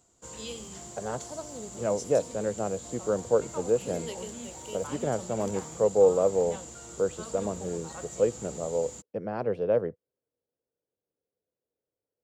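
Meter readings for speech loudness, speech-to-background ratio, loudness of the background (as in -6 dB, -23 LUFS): -29.0 LUFS, 11.5 dB, -40.5 LUFS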